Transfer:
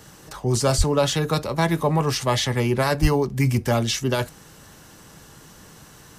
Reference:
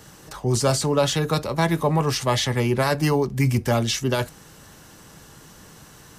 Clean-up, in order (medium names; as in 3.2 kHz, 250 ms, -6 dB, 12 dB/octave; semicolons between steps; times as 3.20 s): 0.77–0.89 s: high-pass 140 Hz 24 dB/octave; 3.01–3.13 s: high-pass 140 Hz 24 dB/octave